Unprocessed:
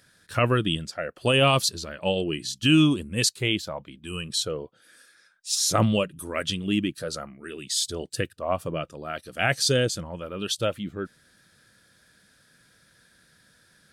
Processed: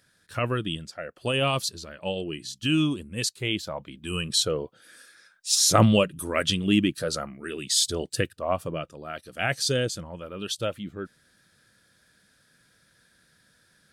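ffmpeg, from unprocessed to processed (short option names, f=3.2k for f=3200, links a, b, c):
-af "volume=3.5dB,afade=t=in:st=3.37:d=0.76:silence=0.375837,afade=t=out:st=7.88:d=1.02:silence=0.473151"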